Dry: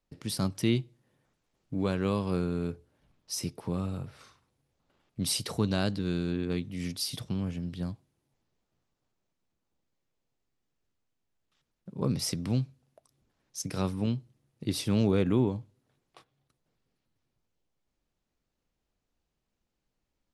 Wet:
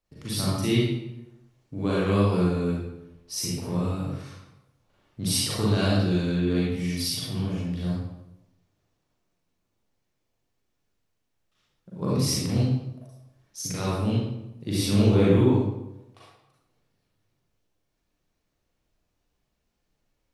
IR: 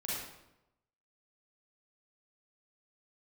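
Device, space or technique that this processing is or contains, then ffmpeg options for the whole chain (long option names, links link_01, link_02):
bathroom: -filter_complex "[1:a]atrim=start_sample=2205[link_01];[0:a][link_01]afir=irnorm=-1:irlink=0,equalizer=frequency=200:width=2.4:gain=-4.5,volume=3.5dB"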